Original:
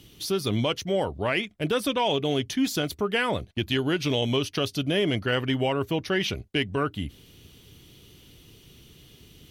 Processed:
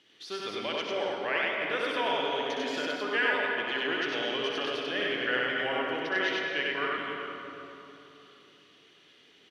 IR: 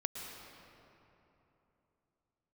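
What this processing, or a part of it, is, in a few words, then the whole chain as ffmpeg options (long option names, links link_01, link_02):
station announcement: -filter_complex "[0:a]highpass=450,lowpass=4300,equalizer=frequency=1700:width_type=o:width=0.54:gain=9,aecho=1:1:64.14|96.21:0.501|0.891[link_01];[1:a]atrim=start_sample=2205[link_02];[link_01][link_02]afir=irnorm=-1:irlink=0,volume=-6.5dB"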